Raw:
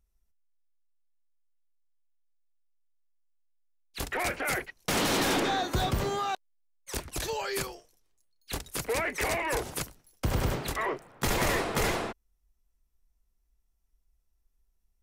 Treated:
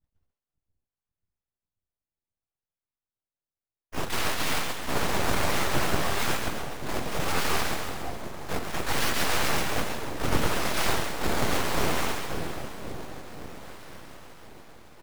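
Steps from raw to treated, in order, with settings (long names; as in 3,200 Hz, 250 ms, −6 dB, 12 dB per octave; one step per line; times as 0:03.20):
downward expander −59 dBFS
in parallel at −2.5 dB: downward compressor 16 to 1, threshold −37 dBFS, peak gain reduction 14 dB
on the sum: brickwall limiter −25 dBFS, peak gain reduction 7.5 dB
speech leveller within 5 dB 2 s
on a send: feedback delay with all-pass diffusion 516 ms, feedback 73%, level −16 dB
on the sum: sample-and-hold swept by an LFO 23×, swing 100% 0.63 Hz
notch comb filter 160 Hz
pitch-shifted copies added −7 semitones −15 dB, −4 semitones −3 dB, +12 semitones −4 dB
echo with a time of its own for lows and highs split 440 Hz, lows 536 ms, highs 135 ms, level −5 dB
full-wave rectification
level +6.5 dB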